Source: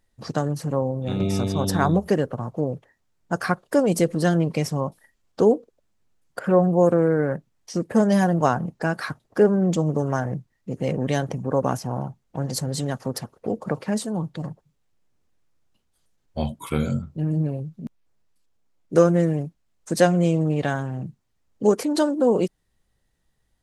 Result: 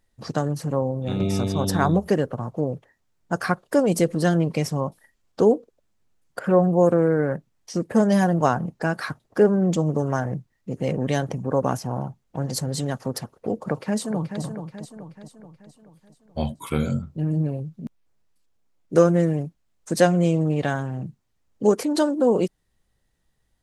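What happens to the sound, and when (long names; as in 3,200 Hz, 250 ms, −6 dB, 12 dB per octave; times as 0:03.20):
0:13.56–0:14.42: delay throw 430 ms, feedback 50%, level −8.5 dB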